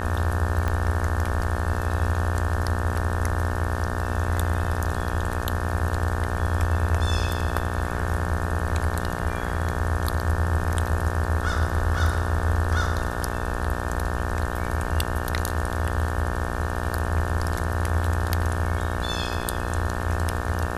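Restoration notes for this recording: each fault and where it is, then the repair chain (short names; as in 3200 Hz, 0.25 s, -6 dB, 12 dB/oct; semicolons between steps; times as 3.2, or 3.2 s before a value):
buzz 60 Hz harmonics 30 -30 dBFS
0.68 pop -14 dBFS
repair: de-click; de-hum 60 Hz, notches 30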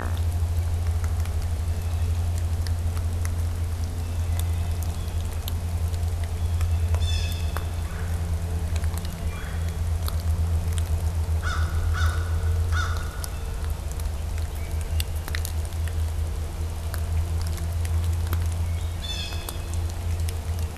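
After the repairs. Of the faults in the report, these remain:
0.68 pop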